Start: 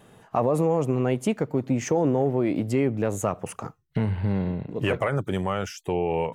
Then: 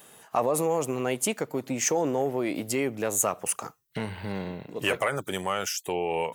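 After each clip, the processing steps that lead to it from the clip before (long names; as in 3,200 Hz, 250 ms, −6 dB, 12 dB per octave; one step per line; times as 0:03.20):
RIAA equalisation recording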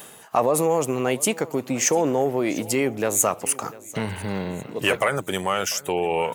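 reversed playback
upward compression, threshold −31 dBFS
reversed playback
repeating echo 696 ms, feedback 39%, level −20 dB
level +5 dB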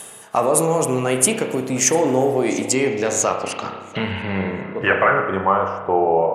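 low-pass filter sweep 10,000 Hz → 680 Hz, 0:02.27–0:06.16
spring reverb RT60 1.1 s, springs 31 ms, chirp 25 ms, DRR 3.5 dB
level +1.5 dB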